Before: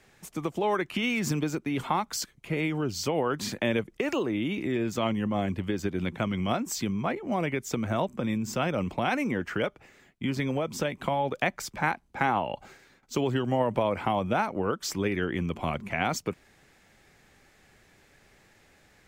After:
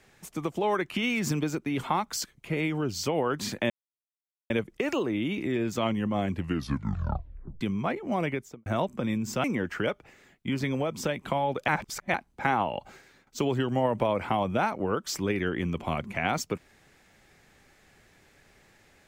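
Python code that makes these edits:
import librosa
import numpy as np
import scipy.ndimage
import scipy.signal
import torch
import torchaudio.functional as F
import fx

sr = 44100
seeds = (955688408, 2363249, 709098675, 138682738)

y = fx.studio_fade_out(x, sr, start_s=7.47, length_s=0.39)
y = fx.edit(y, sr, fx.insert_silence(at_s=3.7, length_s=0.8),
    fx.tape_stop(start_s=5.52, length_s=1.29),
    fx.cut(start_s=8.64, length_s=0.56),
    fx.reverse_span(start_s=11.44, length_s=0.46), tone=tone)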